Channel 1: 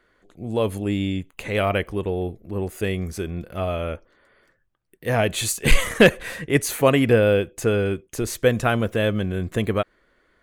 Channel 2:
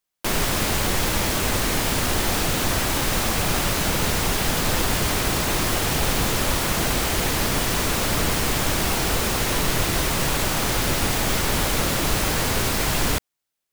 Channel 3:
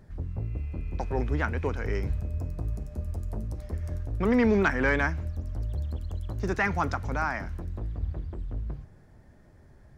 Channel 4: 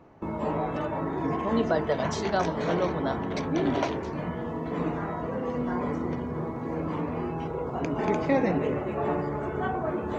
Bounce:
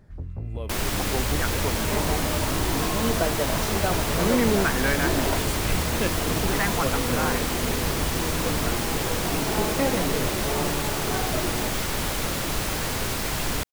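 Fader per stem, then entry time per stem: −15.5, −5.0, −0.5, −1.0 decibels; 0.00, 0.45, 0.00, 1.50 seconds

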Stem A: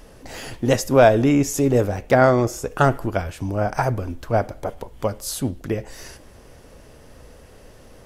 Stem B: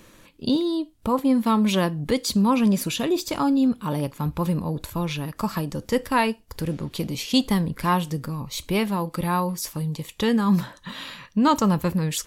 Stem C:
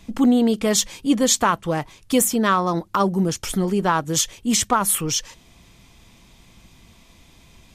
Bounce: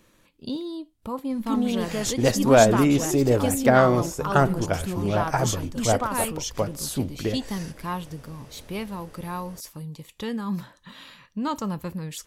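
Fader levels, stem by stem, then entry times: −2.5, −9.0, −9.0 decibels; 1.55, 0.00, 1.30 seconds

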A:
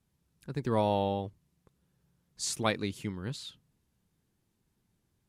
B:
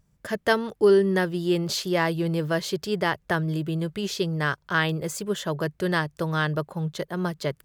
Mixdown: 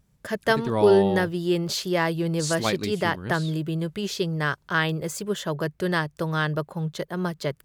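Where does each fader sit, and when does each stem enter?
+3.0, 0.0 decibels; 0.00, 0.00 seconds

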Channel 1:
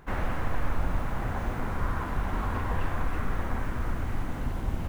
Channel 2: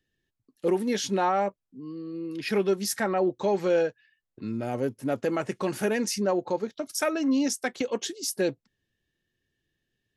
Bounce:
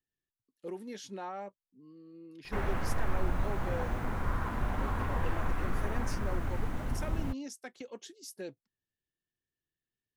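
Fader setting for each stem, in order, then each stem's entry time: −3.0, −16.0 decibels; 2.45, 0.00 seconds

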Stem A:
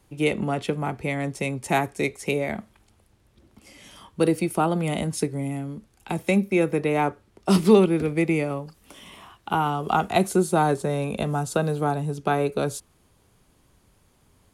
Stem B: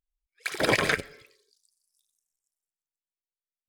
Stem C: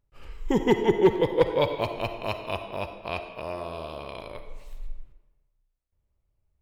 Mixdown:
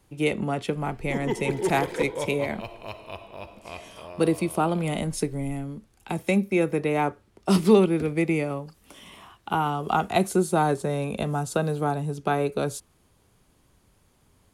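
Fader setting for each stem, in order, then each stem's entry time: −1.5, −15.5, −7.5 decibels; 0.00, 1.05, 0.60 seconds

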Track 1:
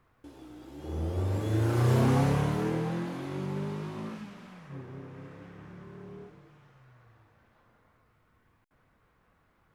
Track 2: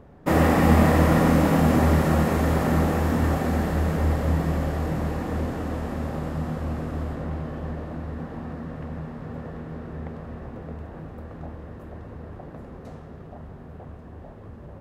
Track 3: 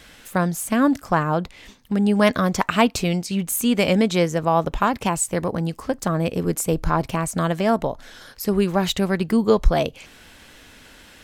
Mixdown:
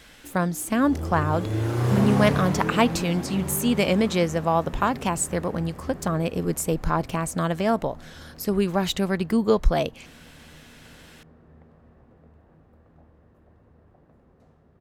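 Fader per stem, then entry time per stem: +1.5, −17.5, −3.0 decibels; 0.00, 1.55, 0.00 seconds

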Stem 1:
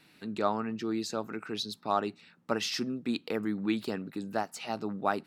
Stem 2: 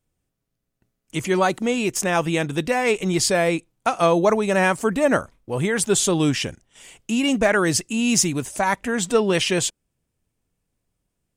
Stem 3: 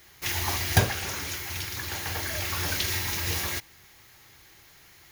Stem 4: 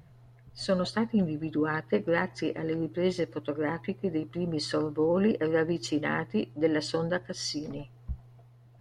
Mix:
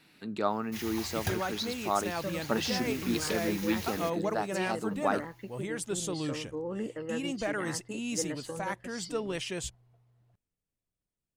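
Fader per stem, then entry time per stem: −0.5, −15.0, −12.5, −10.5 decibels; 0.00, 0.00, 0.50, 1.55 seconds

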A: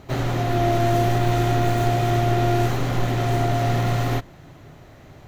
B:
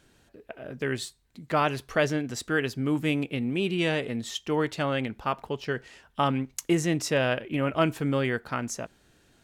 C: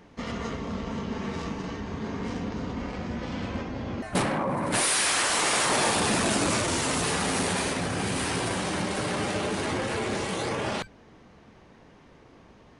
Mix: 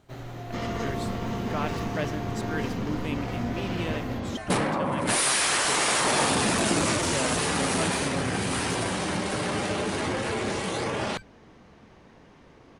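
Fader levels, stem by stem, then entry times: −15.5, −8.0, +0.5 decibels; 0.00, 0.00, 0.35 seconds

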